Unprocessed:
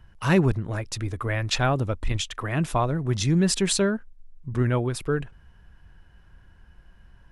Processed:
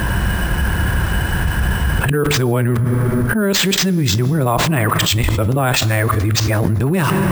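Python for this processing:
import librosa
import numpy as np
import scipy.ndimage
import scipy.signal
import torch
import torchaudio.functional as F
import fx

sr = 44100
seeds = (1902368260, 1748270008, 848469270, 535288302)

y = np.flip(x).copy()
y = scipy.signal.sosfilt(scipy.signal.butter(2, 64.0, 'highpass', fs=sr, output='sos'), y)
y = fx.rev_fdn(y, sr, rt60_s=1.5, lf_ratio=1.3, hf_ratio=0.8, size_ms=92.0, drr_db=16.5)
y = np.repeat(y[::4], 4)[:len(y)]
y = fx.env_flatten(y, sr, amount_pct=100)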